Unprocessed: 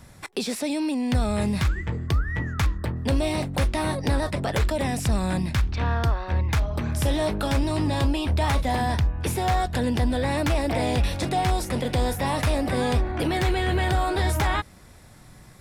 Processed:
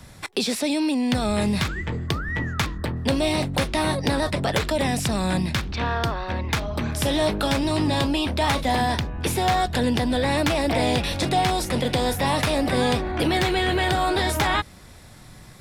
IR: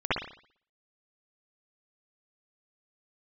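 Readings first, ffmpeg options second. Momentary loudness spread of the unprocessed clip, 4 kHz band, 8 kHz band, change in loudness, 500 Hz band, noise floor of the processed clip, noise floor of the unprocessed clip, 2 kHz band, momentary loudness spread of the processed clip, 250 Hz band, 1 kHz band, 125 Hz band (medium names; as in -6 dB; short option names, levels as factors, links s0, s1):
3 LU, +6.5 dB, +3.5 dB, +2.0 dB, +3.0 dB, -45 dBFS, -48 dBFS, +4.0 dB, 5 LU, +2.5 dB, +3.0 dB, -2.0 dB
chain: -filter_complex "[0:a]acrossover=split=140[s0][s1];[s0]asoftclip=type=hard:threshold=0.0224[s2];[s1]equalizer=f=3700:w=1.2:g=4[s3];[s2][s3]amix=inputs=2:normalize=0,volume=1.41"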